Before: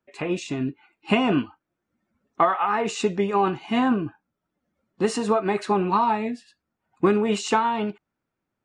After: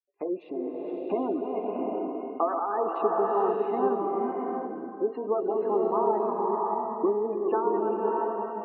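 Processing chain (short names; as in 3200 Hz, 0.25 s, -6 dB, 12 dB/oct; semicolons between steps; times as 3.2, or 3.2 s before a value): reverse delay 0.227 s, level -7 dB; tilt -4.5 dB/oct; gate -37 dBFS, range -28 dB; in parallel at 0 dB: compressor, threshold -20 dBFS, peak gain reduction 13 dB; on the sum: HPF 380 Hz 24 dB/oct; tape spacing loss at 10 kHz 35 dB; spectral gate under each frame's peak -25 dB strong; on a send: thin delay 92 ms, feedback 78%, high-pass 1900 Hz, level -22 dB; on the sum: bloom reverb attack 0.71 s, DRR -1 dB; gain -8.5 dB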